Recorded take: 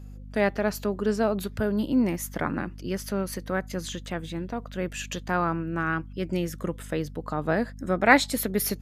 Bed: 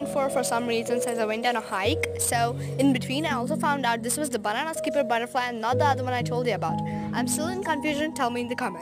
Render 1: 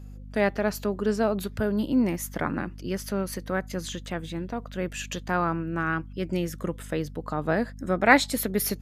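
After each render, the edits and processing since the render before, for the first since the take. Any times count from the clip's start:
no processing that can be heard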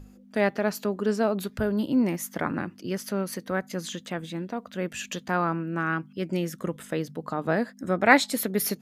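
mains-hum notches 50/100/150 Hz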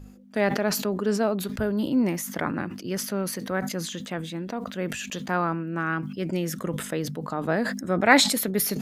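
level that may fall only so fast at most 62 dB per second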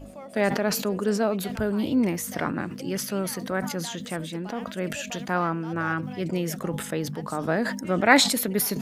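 mix in bed −17 dB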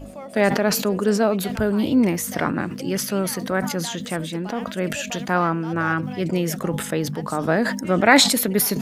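level +5 dB
brickwall limiter −2 dBFS, peak gain reduction 3 dB

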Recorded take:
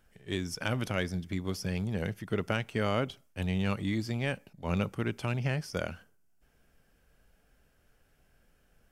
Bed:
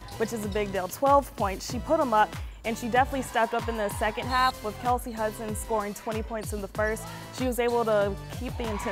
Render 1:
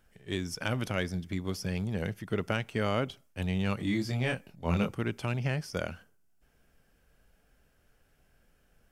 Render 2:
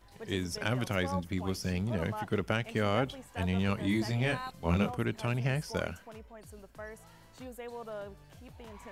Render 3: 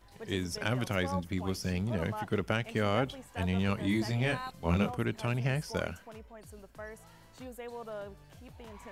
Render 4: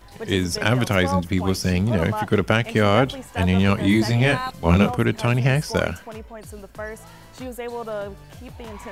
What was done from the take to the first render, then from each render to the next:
0:03.77–0:04.96: double-tracking delay 24 ms −3 dB
mix in bed −17.5 dB
no processing that can be heard
level +12 dB

